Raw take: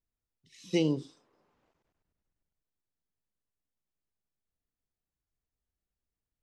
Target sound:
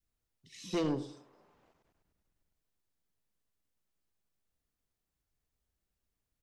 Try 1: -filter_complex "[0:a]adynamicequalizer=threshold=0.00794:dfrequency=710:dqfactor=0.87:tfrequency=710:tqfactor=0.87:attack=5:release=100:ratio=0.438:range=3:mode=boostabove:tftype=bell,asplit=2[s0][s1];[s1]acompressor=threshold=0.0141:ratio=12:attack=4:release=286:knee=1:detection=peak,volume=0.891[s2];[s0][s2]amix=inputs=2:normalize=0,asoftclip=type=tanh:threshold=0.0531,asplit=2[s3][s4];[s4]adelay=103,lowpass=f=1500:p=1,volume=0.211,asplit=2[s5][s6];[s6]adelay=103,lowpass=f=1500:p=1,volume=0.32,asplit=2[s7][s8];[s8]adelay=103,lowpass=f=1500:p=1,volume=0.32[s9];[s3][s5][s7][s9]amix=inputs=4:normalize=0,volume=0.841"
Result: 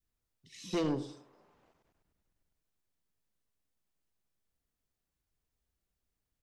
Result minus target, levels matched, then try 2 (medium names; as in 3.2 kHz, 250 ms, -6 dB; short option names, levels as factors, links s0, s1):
compression: peak gain reduction -7 dB
-filter_complex "[0:a]adynamicequalizer=threshold=0.00794:dfrequency=710:dqfactor=0.87:tfrequency=710:tqfactor=0.87:attack=5:release=100:ratio=0.438:range=3:mode=boostabove:tftype=bell,asplit=2[s0][s1];[s1]acompressor=threshold=0.00596:ratio=12:attack=4:release=286:knee=1:detection=peak,volume=0.891[s2];[s0][s2]amix=inputs=2:normalize=0,asoftclip=type=tanh:threshold=0.0531,asplit=2[s3][s4];[s4]adelay=103,lowpass=f=1500:p=1,volume=0.211,asplit=2[s5][s6];[s6]adelay=103,lowpass=f=1500:p=1,volume=0.32,asplit=2[s7][s8];[s8]adelay=103,lowpass=f=1500:p=1,volume=0.32[s9];[s3][s5][s7][s9]amix=inputs=4:normalize=0,volume=0.841"